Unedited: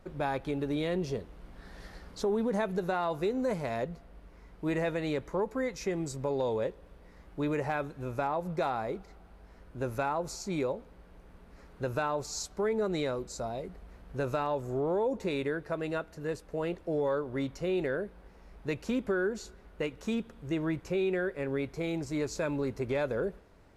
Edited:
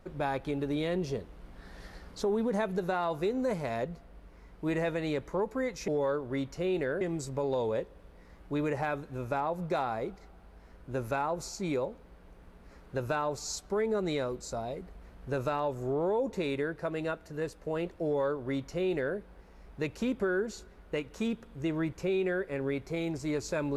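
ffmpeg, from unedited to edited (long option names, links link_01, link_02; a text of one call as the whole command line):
ffmpeg -i in.wav -filter_complex "[0:a]asplit=3[link_01][link_02][link_03];[link_01]atrim=end=5.882[link_04];[link_02]atrim=start=16.908:end=18.042[link_05];[link_03]atrim=start=5.878[link_06];[link_04][link_05]acrossfade=duration=0.004:curve1=hsin:curve2=hsin[link_07];[link_07][link_06]acrossfade=duration=0.004:curve1=hsin:curve2=hsin" out.wav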